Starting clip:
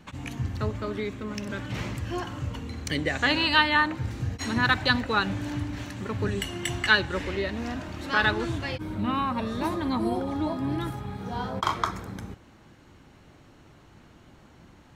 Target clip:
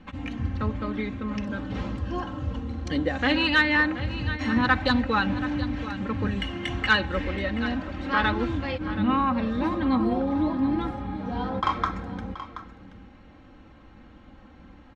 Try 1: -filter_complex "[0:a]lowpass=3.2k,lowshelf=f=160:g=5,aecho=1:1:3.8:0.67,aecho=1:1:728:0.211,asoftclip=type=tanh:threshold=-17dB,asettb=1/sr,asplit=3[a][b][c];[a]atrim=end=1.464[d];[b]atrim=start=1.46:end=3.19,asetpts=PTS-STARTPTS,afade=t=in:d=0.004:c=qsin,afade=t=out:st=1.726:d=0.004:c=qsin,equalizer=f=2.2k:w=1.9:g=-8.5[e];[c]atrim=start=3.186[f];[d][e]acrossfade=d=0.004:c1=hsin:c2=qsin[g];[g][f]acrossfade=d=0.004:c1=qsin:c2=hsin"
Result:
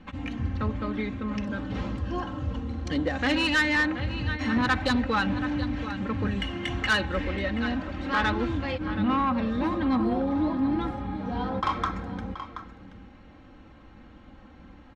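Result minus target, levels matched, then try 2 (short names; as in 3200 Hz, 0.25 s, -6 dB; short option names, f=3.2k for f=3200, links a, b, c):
soft clip: distortion +13 dB
-filter_complex "[0:a]lowpass=3.2k,lowshelf=f=160:g=5,aecho=1:1:3.8:0.67,aecho=1:1:728:0.211,asoftclip=type=tanh:threshold=-7dB,asettb=1/sr,asplit=3[a][b][c];[a]atrim=end=1.464[d];[b]atrim=start=1.46:end=3.19,asetpts=PTS-STARTPTS,afade=t=in:d=0.004:c=qsin,afade=t=out:st=1.726:d=0.004:c=qsin,equalizer=f=2.2k:w=1.9:g=-8.5[e];[c]atrim=start=3.186[f];[d][e]acrossfade=d=0.004:c1=hsin:c2=qsin[g];[g][f]acrossfade=d=0.004:c1=qsin:c2=hsin"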